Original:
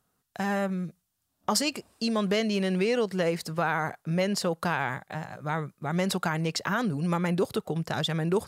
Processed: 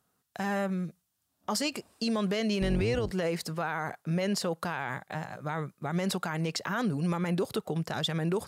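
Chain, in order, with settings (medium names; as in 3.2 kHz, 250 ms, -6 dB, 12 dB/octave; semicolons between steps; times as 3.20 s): 2.61–3.11 s: octave divider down 2 oct, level +4 dB; high-pass 85 Hz 6 dB/octave; peak limiter -20.5 dBFS, peak gain reduction 7.5 dB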